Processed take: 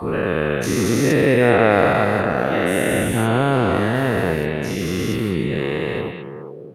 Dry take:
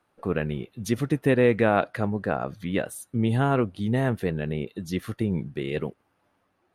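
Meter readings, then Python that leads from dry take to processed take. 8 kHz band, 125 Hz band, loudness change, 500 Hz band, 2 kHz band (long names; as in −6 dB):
+12.5 dB, +5.5 dB, +7.5 dB, +8.5 dB, +11.0 dB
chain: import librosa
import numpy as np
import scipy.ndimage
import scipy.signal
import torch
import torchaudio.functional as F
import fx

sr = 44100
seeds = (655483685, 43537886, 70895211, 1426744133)

y = fx.spec_dilate(x, sr, span_ms=480)
y = fx.echo_stepped(y, sr, ms=205, hz=2800.0, octaves=-1.4, feedback_pct=70, wet_db=-4)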